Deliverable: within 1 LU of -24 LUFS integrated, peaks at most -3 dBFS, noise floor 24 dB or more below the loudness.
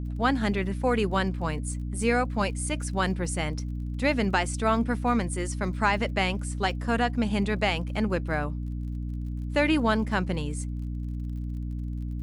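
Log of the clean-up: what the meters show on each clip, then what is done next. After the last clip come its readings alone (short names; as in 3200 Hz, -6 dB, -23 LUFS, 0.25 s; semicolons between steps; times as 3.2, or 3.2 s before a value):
ticks 39/s; hum 60 Hz; harmonics up to 300 Hz; hum level -29 dBFS; loudness -28.0 LUFS; peak -10.0 dBFS; loudness target -24.0 LUFS
-> de-click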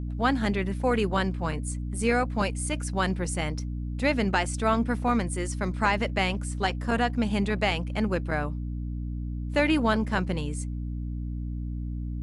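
ticks 0/s; hum 60 Hz; harmonics up to 300 Hz; hum level -29 dBFS
-> de-hum 60 Hz, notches 5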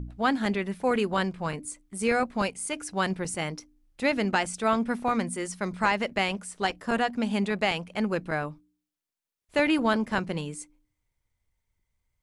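hum none; loudness -28.0 LUFS; peak -10.5 dBFS; loudness target -24.0 LUFS
-> gain +4 dB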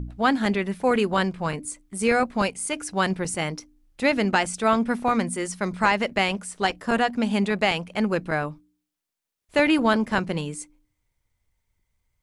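loudness -24.0 LUFS; peak -6.5 dBFS; noise floor -83 dBFS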